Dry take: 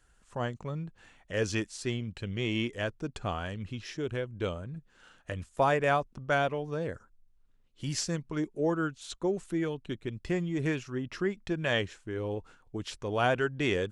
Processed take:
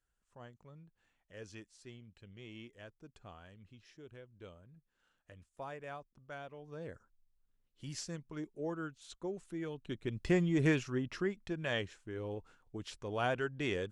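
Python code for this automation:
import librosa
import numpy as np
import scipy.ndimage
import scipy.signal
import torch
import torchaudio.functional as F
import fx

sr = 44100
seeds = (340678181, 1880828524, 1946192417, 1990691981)

y = fx.gain(x, sr, db=fx.line((6.46, -19.5), (6.86, -10.5), (9.57, -10.5), (10.26, 1.0), (10.81, 1.0), (11.45, -7.0)))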